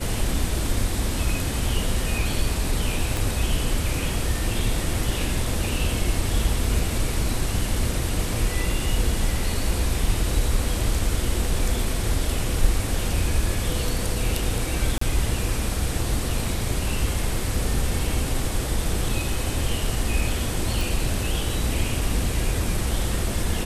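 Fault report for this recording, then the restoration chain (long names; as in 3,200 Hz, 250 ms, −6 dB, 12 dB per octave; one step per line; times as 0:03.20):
0:03.17: click
0:14.98–0:15.01: drop-out 34 ms
0:20.81: click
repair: click removal
repair the gap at 0:14.98, 34 ms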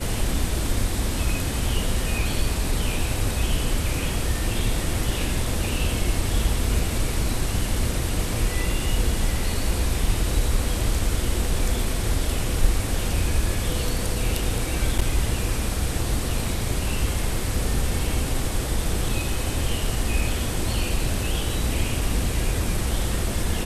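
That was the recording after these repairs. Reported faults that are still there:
0:03.17: click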